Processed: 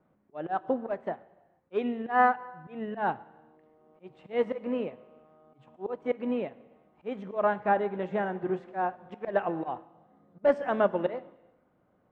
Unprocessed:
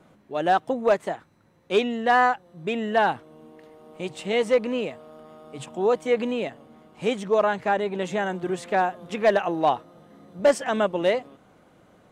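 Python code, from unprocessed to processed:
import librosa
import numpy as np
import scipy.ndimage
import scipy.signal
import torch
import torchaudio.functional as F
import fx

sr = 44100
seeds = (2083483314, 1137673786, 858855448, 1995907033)

y = fx.auto_swell(x, sr, attack_ms=150.0)
y = scipy.signal.sosfilt(scipy.signal.butter(2, 1700.0, 'lowpass', fs=sr, output='sos'), y)
y = fx.rev_gated(y, sr, seeds[0], gate_ms=490, shape='falling', drr_db=10.5)
y = fx.upward_expand(y, sr, threshold_db=-44.0, expansion=1.5)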